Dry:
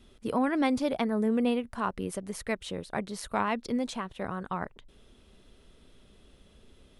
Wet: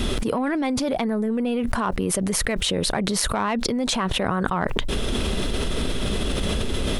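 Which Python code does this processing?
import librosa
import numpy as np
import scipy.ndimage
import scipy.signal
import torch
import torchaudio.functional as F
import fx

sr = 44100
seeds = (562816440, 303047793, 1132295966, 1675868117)

p1 = 10.0 ** (-26.0 / 20.0) * np.tanh(x / 10.0 ** (-26.0 / 20.0))
p2 = x + (p1 * librosa.db_to_amplitude(-3.0))
p3 = fx.env_flatten(p2, sr, amount_pct=100)
y = p3 * librosa.db_to_amplitude(-2.0)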